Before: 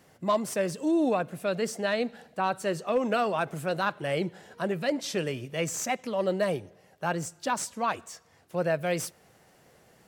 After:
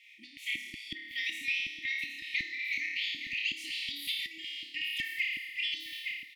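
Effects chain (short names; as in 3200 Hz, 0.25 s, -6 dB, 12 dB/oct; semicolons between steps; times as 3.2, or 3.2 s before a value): speed glide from 118% -> 199%; three-band isolator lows -21 dB, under 540 Hz, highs -19 dB, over 3700 Hz; flutter echo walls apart 4.8 m, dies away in 0.86 s; LFO high-pass square 2.7 Hz 430–2500 Hz; bell 480 Hz -12 dB 0.83 oct; echo 0.86 s -15.5 dB; compressor 6:1, threshold -33 dBFS, peak gain reduction 13.5 dB; brick-wall FIR band-stop 340–1800 Hz; gain +4.5 dB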